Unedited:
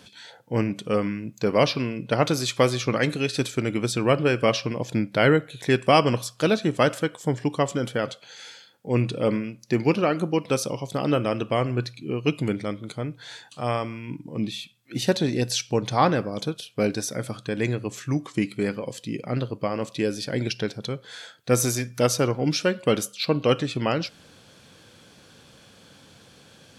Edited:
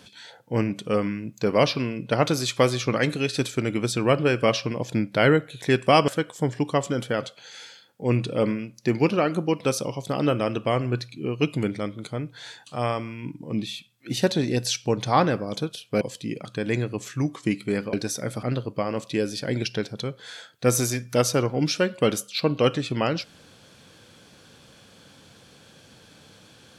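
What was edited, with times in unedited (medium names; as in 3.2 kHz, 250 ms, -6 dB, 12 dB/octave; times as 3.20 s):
6.08–6.93 s: delete
16.86–17.36 s: swap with 18.84–19.28 s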